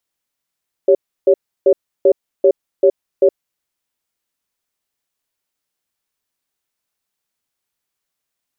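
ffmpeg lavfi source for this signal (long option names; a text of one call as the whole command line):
ffmpeg -f lavfi -i "aevalsrc='0.335*(sin(2*PI*392*t)+sin(2*PI*558*t))*clip(min(mod(t,0.39),0.07-mod(t,0.39))/0.005,0,1)':duration=2.5:sample_rate=44100" out.wav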